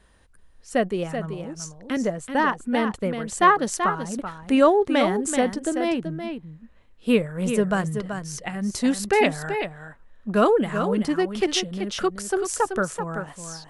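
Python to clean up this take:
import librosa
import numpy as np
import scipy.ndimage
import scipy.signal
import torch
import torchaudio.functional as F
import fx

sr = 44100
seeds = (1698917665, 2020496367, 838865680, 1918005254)

y = fx.fix_echo_inverse(x, sr, delay_ms=382, level_db=-8.0)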